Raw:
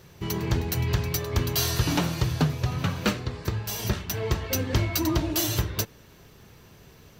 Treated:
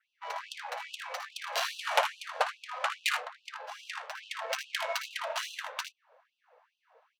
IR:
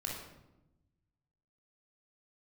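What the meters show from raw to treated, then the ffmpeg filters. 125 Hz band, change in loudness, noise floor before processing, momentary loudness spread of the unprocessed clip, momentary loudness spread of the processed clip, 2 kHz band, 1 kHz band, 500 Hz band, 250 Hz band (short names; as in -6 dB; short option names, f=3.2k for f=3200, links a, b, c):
under -40 dB, -8.0 dB, -52 dBFS, 6 LU, 11 LU, +0.5 dB, +1.5 dB, -7.0 dB, under -40 dB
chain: -af "adynamicsmooth=sensitivity=2.5:basefreq=650,aecho=1:1:57|78:0.316|0.355,adynamicequalizer=threshold=0.00158:dfrequency=4800:dqfactor=2.3:tfrequency=4800:tqfactor=2.3:attack=5:release=100:ratio=0.375:range=2:mode=cutabove:tftype=bell,afftfilt=real='re*gte(b*sr/1024,450*pow(2600/450,0.5+0.5*sin(2*PI*2.4*pts/sr)))':imag='im*gte(b*sr/1024,450*pow(2600/450,0.5+0.5*sin(2*PI*2.4*pts/sr)))':win_size=1024:overlap=0.75,volume=5dB"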